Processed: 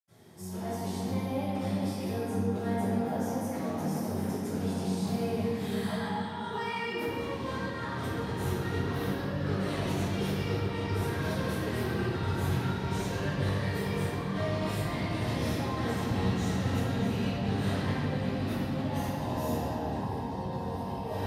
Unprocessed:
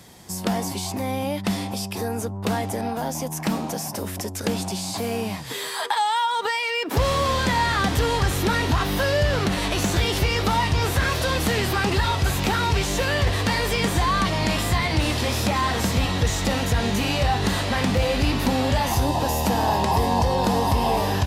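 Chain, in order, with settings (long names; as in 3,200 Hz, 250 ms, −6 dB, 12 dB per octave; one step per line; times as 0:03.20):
parametric band 82 Hz −7.5 dB 1.1 octaves
compressor whose output falls as the input rises −25 dBFS, ratio −0.5
convolution reverb RT60 3.5 s, pre-delay 77 ms, DRR −60 dB
level −8 dB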